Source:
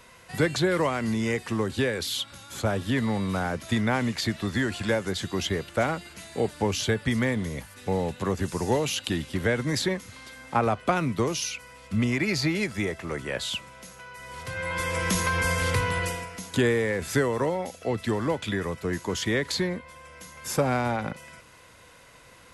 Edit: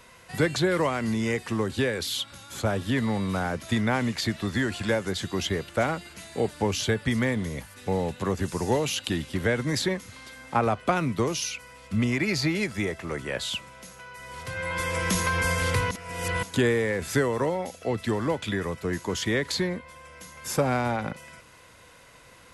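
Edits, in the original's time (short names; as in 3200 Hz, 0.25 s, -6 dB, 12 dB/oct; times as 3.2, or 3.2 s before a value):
15.91–16.43 reverse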